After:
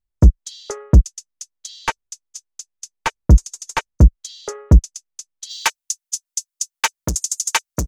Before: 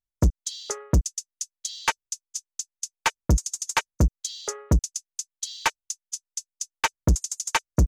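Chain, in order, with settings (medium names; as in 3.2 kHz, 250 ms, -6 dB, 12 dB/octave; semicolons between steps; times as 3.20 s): tilt EQ -2 dB/octave, from 5.49 s +2 dB/octave; trim +3 dB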